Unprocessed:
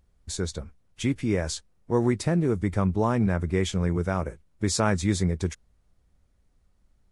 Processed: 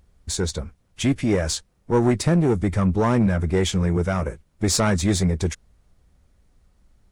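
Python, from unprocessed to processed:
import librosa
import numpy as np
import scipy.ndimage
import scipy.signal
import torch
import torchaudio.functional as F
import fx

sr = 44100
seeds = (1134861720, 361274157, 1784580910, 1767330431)

y = fx.diode_clip(x, sr, knee_db=-21.0)
y = y * 10.0 ** (7.5 / 20.0)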